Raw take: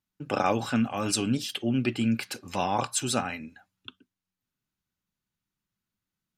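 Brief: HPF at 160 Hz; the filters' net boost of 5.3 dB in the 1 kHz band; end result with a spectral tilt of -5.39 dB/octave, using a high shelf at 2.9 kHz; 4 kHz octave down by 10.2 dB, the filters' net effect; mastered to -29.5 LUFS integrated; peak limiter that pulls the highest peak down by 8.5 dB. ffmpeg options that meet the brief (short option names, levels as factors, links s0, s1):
-af "highpass=160,equalizer=f=1000:t=o:g=8.5,highshelf=f=2900:g=-9,equalizer=f=4000:t=o:g=-7,alimiter=limit=0.141:level=0:latency=1"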